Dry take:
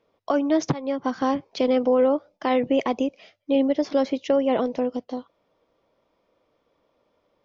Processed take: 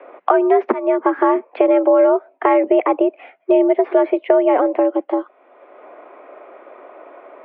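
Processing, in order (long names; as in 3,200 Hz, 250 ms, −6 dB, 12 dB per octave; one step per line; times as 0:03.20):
single-sideband voice off tune +79 Hz 210–2,300 Hz
multiband upward and downward compressor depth 70%
level +7.5 dB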